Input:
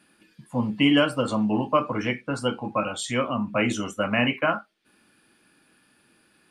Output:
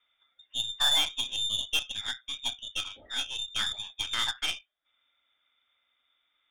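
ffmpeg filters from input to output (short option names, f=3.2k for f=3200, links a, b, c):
-af "lowpass=f=3.2k:t=q:w=0.5098,lowpass=f=3.2k:t=q:w=0.6013,lowpass=f=3.2k:t=q:w=0.9,lowpass=f=3.2k:t=q:w=2.563,afreqshift=-3800,aeval=exprs='0.422*(cos(1*acos(clip(val(0)/0.422,-1,1)))-cos(1*PI/2))+0.0335*(cos(4*acos(clip(val(0)/0.422,-1,1)))-cos(4*PI/2))+0.0237*(cos(7*acos(clip(val(0)/0.422,-1,1)))-cos(7*PI/2))+0.00596*(cos(8*acos(clip(val(0)/0.422,-1,1)))-cos(8*PI/2))':c=same,equalizer=f=160:t=o:w=0.67:g=-11,equalizer=f=400:t=o:w=0.67:g=-9,equalizer=f=1k:t=o:w=0.67:g=-8,equalizer=f=2.5k:t=o:w=0.67:g=-8,volume=-3dB"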